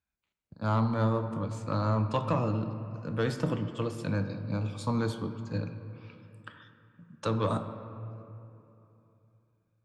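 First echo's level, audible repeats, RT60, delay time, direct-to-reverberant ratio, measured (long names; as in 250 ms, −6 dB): no echo audible, no echo audible, 3.0 s, no echo audible, 8.0 dB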